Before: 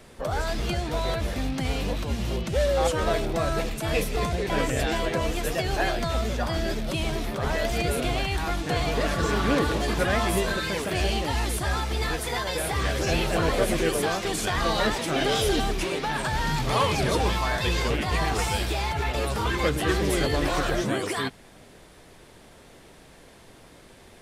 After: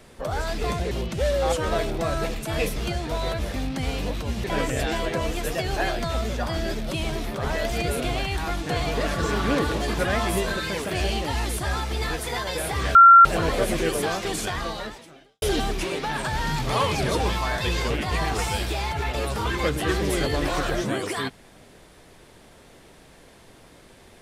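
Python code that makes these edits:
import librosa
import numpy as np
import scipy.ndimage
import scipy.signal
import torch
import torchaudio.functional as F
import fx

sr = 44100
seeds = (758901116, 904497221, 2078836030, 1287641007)

y = fx.edit(x, sr, fx.swap(start_s=0.58, length_s=1.68, other_s=4.11, other_length_s=0.33),
    fx.bleep(start_s=12.95, length_s=0.3, hz=1370.0, db=-6.5),
    fx.fade_out_span(start_s=14.39, length_s=1.03, curve='qua'), tone=tone)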